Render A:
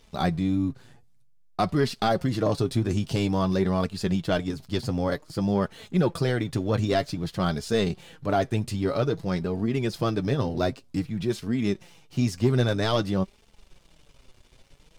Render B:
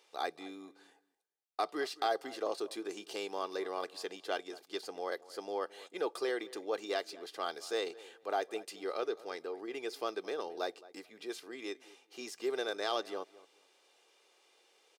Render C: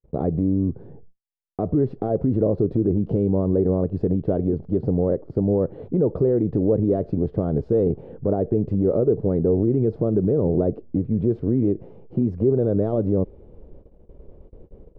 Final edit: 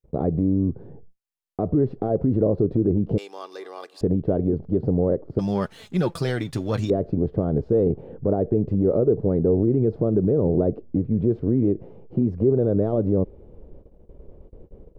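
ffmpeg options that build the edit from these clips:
-filter_complex "[2:a]asplit=3[s0][s1][s2];[s0]atrim=end=3.182[s3];[1:a]atrim=start=3.178:end=4.012[s4];[s1]atrim=start=4.008:end=5.392[s5];[0:a]atrim=start=5.388:end=6.902[s6];[s2]atrim=start=6.898[s7];[s3][s4]acrossfade=d=0.004:c1=hsin:c2=hsin[s8];[s8][s5]acrossfade=d=0.004:c1=hsin:c2=hsin[s9];[s9][s6]acrossfade=d=0.004:c1=hsin:c2=hsin[s10];[s10][s7]acrossfade=d=0.004:c1=hsin:c2=hsin"

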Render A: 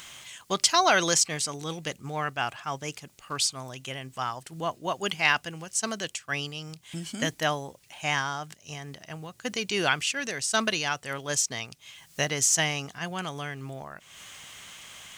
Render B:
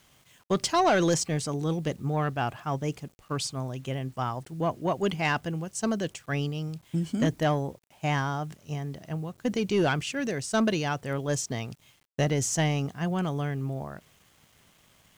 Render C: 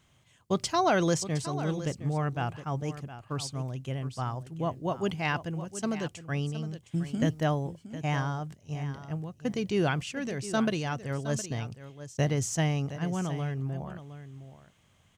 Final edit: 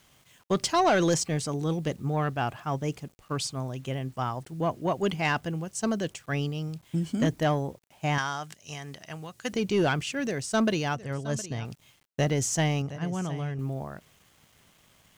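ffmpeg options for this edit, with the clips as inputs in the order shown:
-filter_complex "[2:a]asplit=2[s0][s1];[1:a]asplit=4[s2][s3][s4][s5];[s2]atrim=end=8.182[s6];[0:a]atrim=start=8.178:end=9.532[s7];[s3]atrim=start=9.528:end=10.952[s8];[s0]atrim=start=10.948:end=11.652[s9];[s4]atrim=start=11.648:end=12.822[s10];[s1]atrim=start=12.818:end=13.592[s11];[s5]atrim=start=13.588[s12];[s6][s7]acrossfade=d=0.004:c1=hsin:c2=hsin[s13];[s13][s8]acrossfade=d=0.004:c1=hsin:c2=hsin[s14];[s14][s9]acrossfade=d=0.004:c1=hsin:c2=hsin[s15];[s15][s10]acrossfade=d=0.004:c1=hsin:c2=hsin[s16];[s16][s11]acrossfade=d=0.004:c1=hsin:c2=hsin[s17];[s17][s12]acrossfade=d=0.004:c1=hsin:c2=hsin"

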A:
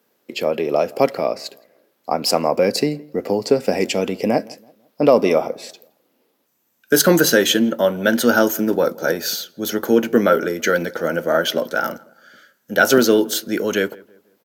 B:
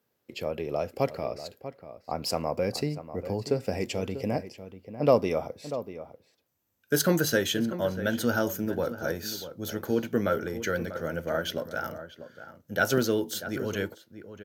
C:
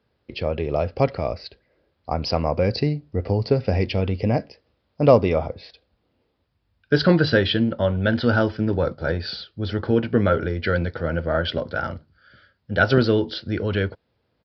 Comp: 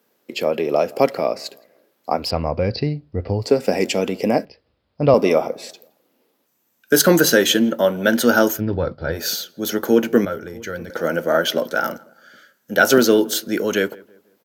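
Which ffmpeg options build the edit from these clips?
-filter_complex "[2:a]asplit=3[s0][s1][s2];[0:a]asplit=5[s3][s4][s5][s6][s7];[s3]atrim=end=2.32[s8];[s0]atrim=start=2.16:end=3.53[s9];[s4]atrim=start=3.37:end=4.452[s10];[s1]atrim=start=4.448:end=5.142[s11];[s5]atrim=start=5.138:end=8.62[s12];[s2]atrim=start=8.52:end=9.21[s13];[s6]atrim=start=9.11:end=10.252[s14];[1:a]atrim=start=10.248:end=10.902[s15];[s7]atrim=start=10.898[s16];[s8][s9]acrossfade=d=0.16:c1=tri:c2=tri[s17];[s17][s10]acrossfade=d=0.16:c1=tri:c2=tri[s18];[s18][s11]acrossfade=d=0.004:c1=hsin:c2=hsin[s19];[s19][s12]acrossfade=d=0.004:c1=hsin:c2=hsin[s20];[s20][s13]acrossfade=d=0.1:c1=tri:c2=tri[s21];[s21][s14]acrossfade=d=0.1:c1=tri:c2=tri[s22];[s22][s15]acrossfade=d=0.004:c1=hsin:c2=hsin[s23];[s23][s16]acrossfade=d=0.004:c1=hsin:c2=hsin"

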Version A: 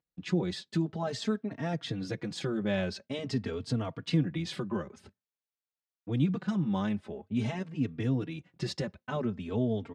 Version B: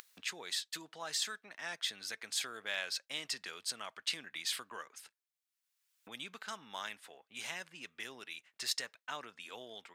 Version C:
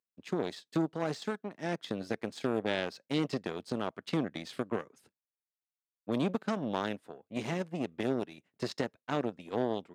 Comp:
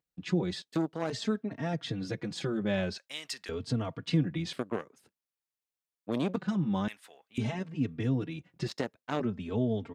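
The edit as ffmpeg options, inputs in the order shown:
-filter_complex "[2:a]asplit=3[s0][s1][s2];[1:a]asplit=2[s3][s4];[0:a]asplit=6[s5][s6][s7][s8][s9][s10];[s5]atrim=end=0.622[s11];[s0]atrim=start=0.618:end=1.102[s12];[s6]atrim=start=1.098:end=2.982[s13];[s3]atrim=start=2.978:end=3.492[s14];[s7]atrim=start=3.488:end=4.532[s15];[s1]atrim=start=4.528:end=6.362[s16];[s8]atrim=start=6.358:end=6.882[s17];[s4]atrim=start=6.878:end=7.382[s18];[s9]atrim=start=7.378:end=8.682[s19];[s2]atrim=start=8.678:end=9.202[s20];[s10]atrim=start=9.198[s21];[s11][s12]acrossfade=d=0.004:c1=hsin:c2=hsin[s22];[s22][s13]acrossfade=d=0.004:c1=hsin:c2=hsin[s23];[s23][s14]acrossfade=d=0.004:c1=hsin:c2=hsin[s24];[s24][s15]acrossfade=d=0.004:c1=hsin:c2=hsin[s25];[s25][s16]acrossfade=d=0.004:c1=hsin:c2=hsin[s26];[s26][s17]acrossfade=d=0.004:c1=hsin:c2=hsin[s27];[s27][s18]acrossfade=d=0.004:c1=hsin:c2=hsin[s28];[s28][s19]acrossfade=d=0.004:c1=hsin:c2=hsin[s29];[s29][s20]acrossfade=d=0.004:c1=hsin:c2=hsin[s30];[s30][s21]acrossfade=d=0.004:c1=hsin:c2=hsin"

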